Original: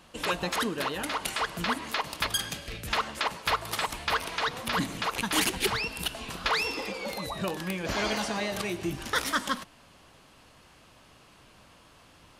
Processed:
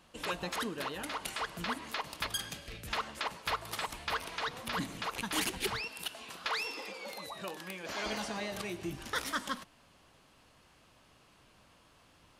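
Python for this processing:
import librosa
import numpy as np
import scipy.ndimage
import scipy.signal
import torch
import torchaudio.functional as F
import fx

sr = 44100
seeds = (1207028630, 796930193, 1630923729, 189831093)

y = fx.highpass(x, sr, hz=440.0, slope=6, at=(5.81, 8.06))
y = y * librosa.db_to_amplitude(-7.0)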